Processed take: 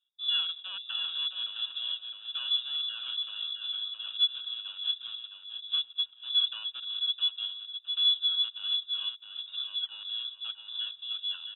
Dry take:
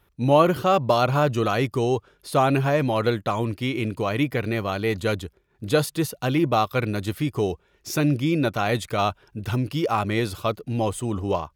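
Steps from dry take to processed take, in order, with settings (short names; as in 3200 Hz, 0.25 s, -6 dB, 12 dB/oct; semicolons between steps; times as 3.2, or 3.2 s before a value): median filter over 41 samples; vowel filter u; on a send: feedback echo 0.662 s, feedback 23%, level -6 dB; on the sum: inverted band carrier 3700 Hz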